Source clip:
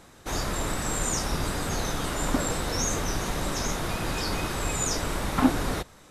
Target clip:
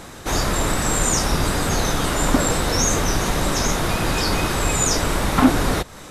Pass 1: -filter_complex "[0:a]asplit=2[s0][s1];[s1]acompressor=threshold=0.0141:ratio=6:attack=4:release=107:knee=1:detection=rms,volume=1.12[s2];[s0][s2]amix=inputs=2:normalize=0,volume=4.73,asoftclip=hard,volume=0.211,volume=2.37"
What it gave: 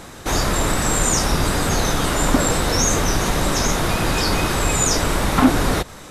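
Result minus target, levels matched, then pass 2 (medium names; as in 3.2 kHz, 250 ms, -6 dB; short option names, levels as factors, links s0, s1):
compression: peak gain reduction -8.5 dB
-filter_complex "[0:a]asplit=2[s0][s1];[s1]acompressor=threshold=0.00447:ratio=6:attack=4:release=107:knee=1:detection=rms,volume=1.12[s2];[s0][s2]amix=inputs=2:normalize=0,volume=4.73,asoftclip=hard,volume=0.211,volume=2.37"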